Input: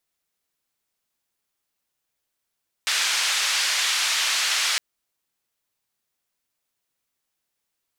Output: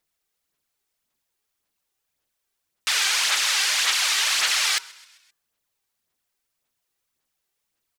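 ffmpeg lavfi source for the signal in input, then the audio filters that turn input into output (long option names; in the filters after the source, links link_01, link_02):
-f lavfi -i "anoisesrc=color=white:duration=1.91:sample_rate=44100:seed=1,highpass=frequency=1400,lowpass=frequency=5400,volume=-11dB"
-filter_complex "[0:a]bandreject=frequency=135:width_type=h:width=4,bandreject=frequency=270:width_type=h:width=4,bandreject=frequency=405:width_type=h:width=4,bandreject=frequency=540:width_type=h:width=4,bandreject=frequency=675:width_type=h:width=4,bandreject=frequency=810:width_type=h:width=4,bandreject=frequency=945:width_type=h:width=4,bandreject=frequency=1080:width_type=h:width=4,bandreject=frequency=1215:width_type=h:width=4,bandreject=frequency=1350:width_type=h:width=4,bandreject=frequency=1485:width_type=h:width=4,aphaser=in_gain=1:out_gain=1:delay=2.6:decay=0.44:speed=1.8:type=sinusoidal,asplit=5[link_01][link_02][link_03][link_04][link_05];[link_02]adelay=131,afreqshift=60,volume=-23dB[link_06];[link_03]adelay=262,afreqshift=120,volume=-28dB[link_07];[link_04]adelay=393,afreqshift=180,volume=-33.1dB[link_08];[link_05]adelay=524,afreqshift=240,volume=-38.1dB[link_09];[link_01][link_06][link_07][link_08][link_09]amix=inputs=5:normalize=0"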